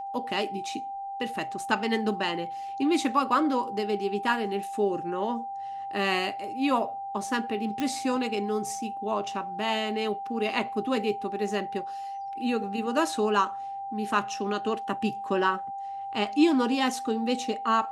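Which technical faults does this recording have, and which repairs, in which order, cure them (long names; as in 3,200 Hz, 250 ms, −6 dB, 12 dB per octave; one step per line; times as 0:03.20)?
whistle 790 Hz −33 dBFS
0:07.80: click −16 dBFS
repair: click removal
notch filter 790 Hz, Q 30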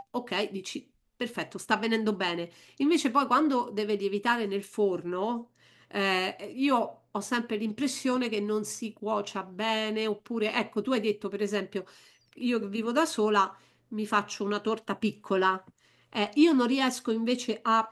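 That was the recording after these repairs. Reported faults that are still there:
none of them is left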